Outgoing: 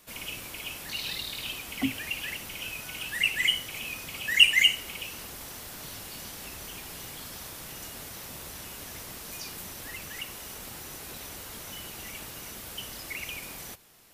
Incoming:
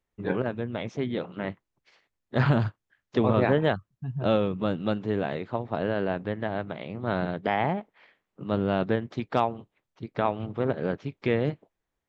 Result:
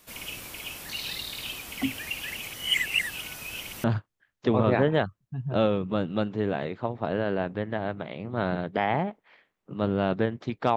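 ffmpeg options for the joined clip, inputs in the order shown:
ffmpeg -i cue0.wav -i cue1.wav -filter_complex "[0:a]apad=whole_dur=10.76,atrim=end=10.76,asplit=2[link_01][link_02];[link_01]atrim=end=2.382[link_03];[link_02]atrim=start=2.378:end=3.842,asetpts=PTS-STARTPTS,areverse[link_04];[1:a]atrim=start=2.538:end=9.46[link_05];[link_03][link_04]acrossfade=duration=0.004:curve1=hsin:curve2=hsin[link_06];[link_06][link_05]acrossfade=duration=0.004:curve1=hsin:curve2=hsin" out.wav

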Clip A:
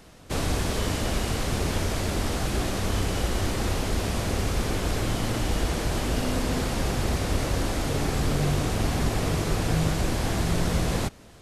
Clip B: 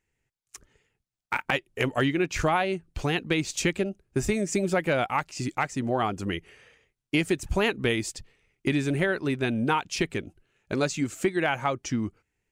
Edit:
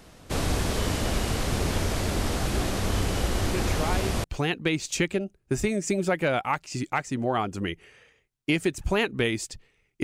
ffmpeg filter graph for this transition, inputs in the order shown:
ffmpeg -i cue0.wav -i cue1.wav -filter_complex "[1:a]asplit=2[link_01][link_02];[0:a]apad=whole_dur=10.03,atrim=end=10.03,atrim=end=4.242[link_03];[link_02]atrim=start=2.888:end=8.68[link_04];[link_01]atrim=start=2.18:end=2.89,asetpts=PTS-STARTPTS,volume=-7dB,afade=type=in:duration=0.004:curve=hsin,afade=type=out:start_time=0.706:duration=0.004:curve=hsin,adelay=155673S[link_05];[link_03][link_04]acrossfade=duration=0.004:curve1=hsin:curve2=hsin[link_06];[link_06][link_05]amix=inputs=2:normalize=0" out.wav

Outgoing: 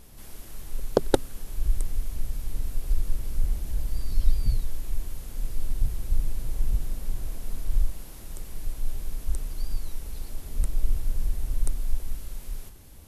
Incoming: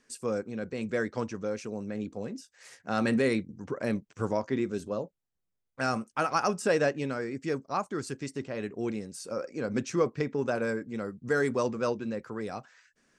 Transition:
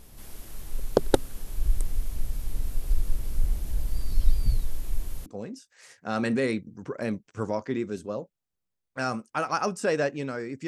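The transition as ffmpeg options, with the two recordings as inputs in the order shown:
ffmpeg -i cue0.wav -i cue1.wav -filter_complex "[0:a]apad=whole_dur=10.67,atrim=end=10.67,atrim=end=5.262[link_01];[1:a]atrim=start=2.078:end=7.49[link_02];[link_01][link_02]acrossfade=duration=0.004:curve1=hsin:curve2=hsin" out.wav

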